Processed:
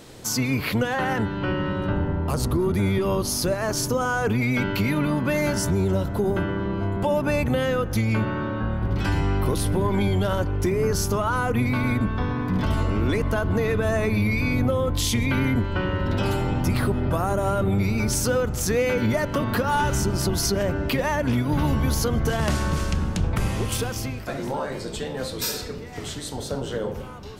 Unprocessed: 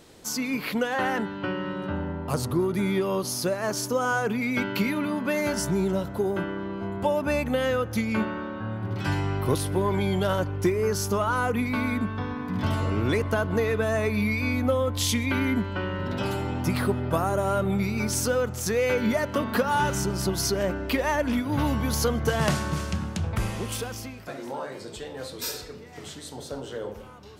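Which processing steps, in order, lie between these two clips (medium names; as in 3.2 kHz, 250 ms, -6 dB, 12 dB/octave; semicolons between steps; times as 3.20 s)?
octave divider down 1 oct, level 0 dB; in parallel at +1 dB: compression, threshold -31 dBFS, peak gain reduction 13.5 dB; on the sum: peak limiter -14 dBFS, peak gain reduction 5 dB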